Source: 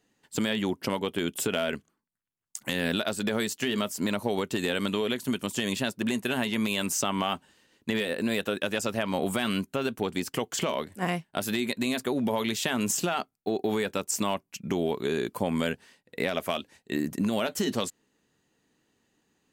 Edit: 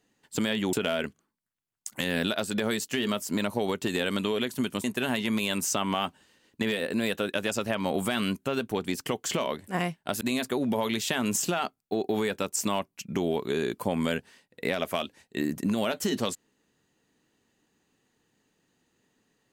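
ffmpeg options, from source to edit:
-filter_complex "[0:a]asplit=4[s0][s1][s2][s3];[s0]atrim=end=0.732[s4];[s1]atrim=start=1.418:end=5.532[s5];[s2]atrim=start=6.118:end=11.492[s6];[s3]atrim=start=11.758[s7];[s4][s5]acrossfade=d=0.004:c1=hsin:c2=hsin[s8];[s8][s6]acrossfade=d=0.004:c1=hsin:c2=hsin[s9];[s9][s7]acrossfade=d=0.004:c1=hsin:c2=hsin"

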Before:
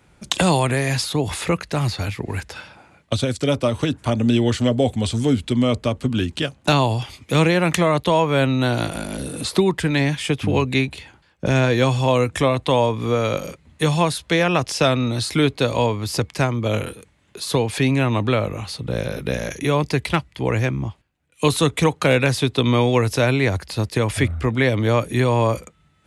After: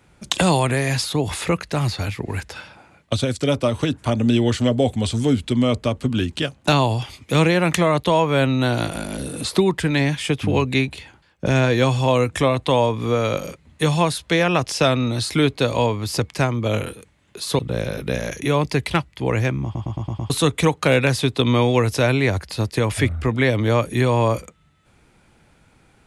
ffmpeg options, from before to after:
-filter_complex "[0:a]asplit=8[s0][s1][s2][s3][s4][s5][s6][s7];[s0]atrim=end=17.592[s8];[s1]atrim=start=18.778:end=20.942[s9];[s2]atrim=start=20.828:end=20.942[s10];[s3]atrim=start=20.828:end=20.942[s11];[s4]atrim=start=20.828:end=20.942[s12];[s5]atrim=start=20.828:end=20.942[s13];[s6]atrim=start=20.828:end=20.942[s14];[s7]atrim=start=21.488[s15];[s8][s9]acrossfade=d=0.004:c1=hsin:c2=hsin[s16];[s16][s10]acrossfade=d=0.004:c1=hsin:c2=hsin[s17];[s17][s11]acrossfade=d=0.004:c1=hsin:c2=hsin[s18];[s18][s12]acrossfade=d=0.004:c1=hsin:c2=hsin[s19];[s19][s13]acrossfade=d=0.004:c1=hsin:c2=hsin[s20];[s20][s14]acrossfade=d=0.004:c1=hsin:c2=hsin[s21];[s21][s15]acrossfade=d=0.004:c1=hsin:c2=hsin"

